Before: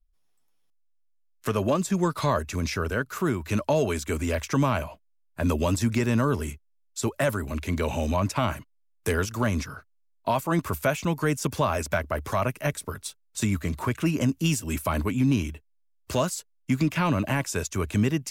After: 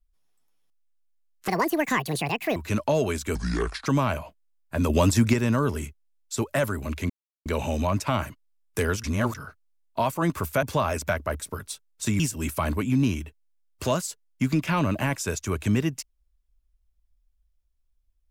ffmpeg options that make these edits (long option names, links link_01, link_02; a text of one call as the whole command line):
ffmpeg -i in.wav -filter_complex "[0:a]asplit=13[link_01][link_02][link_03][link_04][link_05][link_06][link_07][link_08][link_09][link_10][link_11][link_12][link_13];[link_01]atrim=end=1.484[link_14];[link_02]atrim=start=1.48:end=3.37,asetpts=PTS-STARTPTS,asetrate=77175,aresample=44100[link_15];[link_03]atrim=start=3.366:end=4.164[link_16];[link_04]atrim=start=4.16:end=4.51,asetpts=PTS-STARTPTS,asetrate=30429,aresample=44100[link_17];[link_05]atrim=start=4.506:end=5.552[link_18];[link_06]atrim=start=5.548:end=5.992,asetpts=PTS-STARTPTS,volume=4.5dB[link_19];[link_07]atrim=start=5.988:end=7.75,asetpts=PTS-STARTPTS,afade=type=out:start_time=1.758:duration=0.004:curve=hsin,apad=pad_dur=0.36[link_20];[link_08]atrim=start=7.75:end=9.332,asetpts=PTS-STARTPTS,afade=type=in:duration=0.004:curve=hsin[link_21];[link_09]atrim=start=9.328:end=9.642,asetpts=PTS-STARTPTS,areverse[link_22];[link_10]atrim=start=9.638:end=10.922[link_23];[link_11]atrim=start=11.468:end=12.242[link_24];[link_12]atrim=start=12.748:end=13.552[link_25];[link_13]atrim=start=14.478[link_26];[link_14][link_15]acrossfade=duration=0.004:curve1=hsin:curve2=hsin[link_27];[link_27][link_16]acrossfade=duration=0.004:curve1=hsin:curve2=hsin[link_28];[link_28][link_17]acrossfade=duration=0.004:curve1=hsin:curve2=hsin[link_29];[link_29][link_18]acrossfade=duration=0.004:curve1=hsin:curve2=hsin[link_30];[link_30][link_19]acrossfade=duration=0.004:curve1=hsin:curve2=hsin[link_31];[link_20][link_21]concat=n=2:v=0:a=1[link_32];[link_31][link_32]acrossfade=duration=0.004:curve1=hsin:curve2=hsin[link_33];[link_33][link_22]acrossfade=duration=0.004:curve1=hsin:curve2=hsin[link_34];[link_34][link_23]acrossfade=duration=0.004:curve1=hsin:curve2=hsin[link_35];[link_35][link_24]acrossfade=duration=0.004:curve1=hsin:curve2=hsin[link_36];[link_36][link_25]acrossfade=duration=0.004:curve1=hsin:curve2=hsin[link_37];[link_37][link_26]acrossfade=duration=0.004:curve1=hsin:curve2=hsin" out.wav